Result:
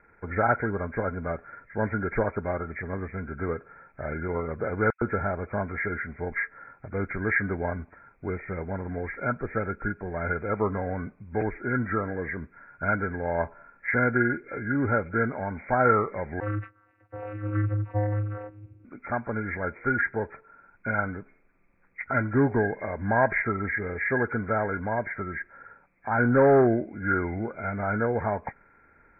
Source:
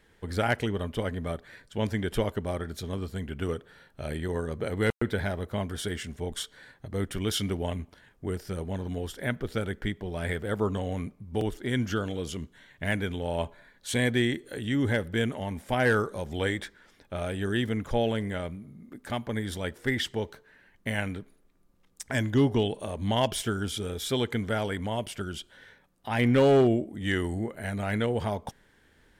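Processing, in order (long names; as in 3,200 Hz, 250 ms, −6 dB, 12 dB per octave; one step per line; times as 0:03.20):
hearing-aid frequency compression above 1,300 Hz 4 to 1
parametric band 910 Hz +6 dB 1.9 octaves
0:16.40–0:18.85: channel vocoder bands 16, square 104 Hz
level −1 dB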